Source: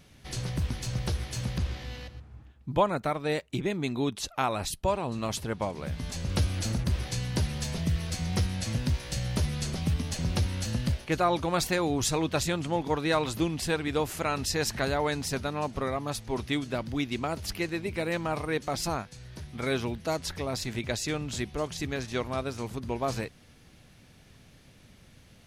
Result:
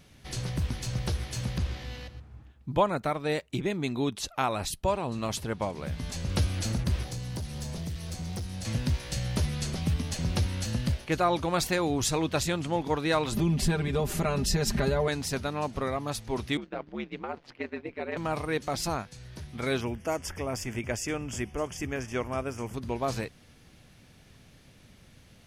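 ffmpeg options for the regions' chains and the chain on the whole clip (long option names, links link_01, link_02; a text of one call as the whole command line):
ffmpeg -i in.wav -filter_complex "[0:a]asettb=1/sr,asplit=3[link_01][link_02][link_03];[link_01]atrim=end=7.034[link_04];[link_02]atrim=start=7.03:end=8.65,asetpts=PTS-STARTPTS,afade=type=in:duration=0.004:curve=qsin,afade=type=out:start_time=1.616:duration=0.004:curve=qsin,acrossover=split=1200|4000[link_05][link_06][link_07];[link_05]acompressor=threshold=-32dB:ratio=4[link_08];[link_06]acompressor=threshold=-55dB:ratio=4[link_09];[link_07]acompressor=threshold=-42dB:ratio=4[link_10];[link_08][link_09][link_10]amix=inputs=3:normalize=0,asoftclip=type=hard:threshold=-30.5dB[link_11];[link_03]atrim=start=8.646[link_12];[link_04][link_11]acrossfade=duration=0.004:curve1=hsin:curve2=qsin[link_13];[link_13][link_12]acrossfade=duration=0.004:curve1=qsin:curve2=hsin,asettb=1/sr,asplit=3[link_14][link_15][link_16];[link_14]atrim=end=13.324[link_17];[link_15]atrim=start=13.32:end=15.08,asetpts=PTS-STARTPTS,afade=type=in:duration=0.004:curve=qsin,afade=type=out:start_time=1.756:duration=0.004:curve=qsin,lowshelf=frequency=400:gain=12,acompressor=threshold=-24dB:ratio=3:attack=3.2:release=140:knee=1:detection=peak,aecho=1:1:5:0.8,atrim=end_sample=77616[link_18];[link_16]atrim=start=15.076[link_19];[link_17][link_18]acrossfade=duration=0.004:curve1=hsin:curve2=qsin[link_20];[link_20][link_19]acrossfade=duration=0.004:curve1=qsin:curve2=hsin,asettb=1/sr,asplit=3[link_21][link_22][link_23];[link_21]atrim=end=16.574[link_24];[link_22]atrim=start=16.57:end=18.17,asetpts=PTS-STARTPTS,afade=type=in:duration=0.004:curve=qsin,afade=type=out:start_time=1.596:duration=0.004:curve=qsin,agate=range=-33dB:threshold=-34dB:ratio=3:release=100:detection=peak,highpass=260,lowpass=2300,aeval=exprs='val(0)*sin(2*PI*73*n/s)':channel_layout=same[link_25];[link_23]atrim=start=18.166[link_26];[link_24][link_25]acrossfade=duration=0.004:curve1=hsin:curve2=qsin[link_27];[link_27][link_26]acrossfade=duration=0.004:curve1=qsin:curve2=hsin,asettb=1/sr,asplit=3[link_28][link_29][link_30];[link_28]atrim=end=19.814[link_31];[link_29]atrim=start=19.81:end=22.74,asetpts=PTS-STARTPTS,afade=type=in:duration=0.004:curve=qsin,afade=type=out:start_time=2.926:duration=0.004:curve=qsin,asuperstop=centerf=4000:order=4:qfactor=2.2,equalizer=frequency=160:width_type=o:width=0.26:gain=-7[link_32];[link_30]atrim=start=22.736[link_33];[link_31][link_32]acrossfade=duration=0.004:curve1=hsin:curve2=qsin[link_34];[link_34][link_33]acrossfade=duration=0.004:curve1=qsin:curve2=hsin" out.wav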